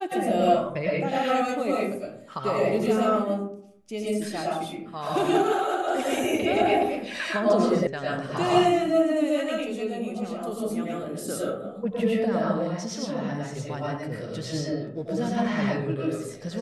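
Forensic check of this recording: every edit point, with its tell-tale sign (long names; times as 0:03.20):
0:07.87: cut off before it has died away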